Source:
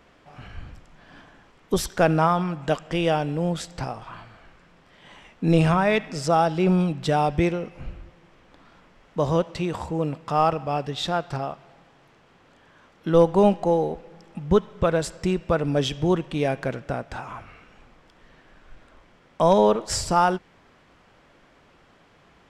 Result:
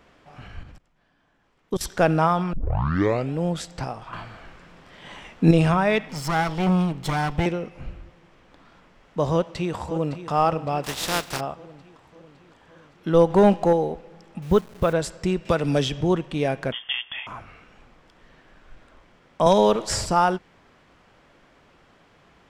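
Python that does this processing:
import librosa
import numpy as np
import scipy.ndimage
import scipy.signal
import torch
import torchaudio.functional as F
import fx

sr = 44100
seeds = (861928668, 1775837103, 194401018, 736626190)

y = fx.level_steps(x, sr, step_db=22, at=(0.63, 1.81))
y = fx.lower_of_two(y, sr, delay_ms=0.93, at=(6.09, 7.46))
y = fx.echo_throw(y, sr, start_s=9.32, length_s=0.97, ms=560, feedback_pct=60, wet_db=-12.5)
y = fx.spec_flatten(y, sr, power=0.4, at=(10.83, 11.39), fade=0.02)
y = fx.leveller(y, sr, passes=1, at=(13.3, 13.73))
y = fx.delta_hold(y, sr, step_db=-40.0, at=(14.42, 14.93))
y = fx.band_squash(y, sr, depth_pct=70, at=(15.45, 16.01))
y = fx.freq_invert(y, sr, carrier_hz=3400, at=(16.72, 17.27))
y = fx.band_squash(y, sr, depth_pct=70, at=(19.46, 20.06))
y = fx.edit(y, sr, fx.tape_start(start_s=2.53, length_s=0.8),
    fx.clip_gain(start_s=4.13, length_s=1.38, db=6.5), tone=tone)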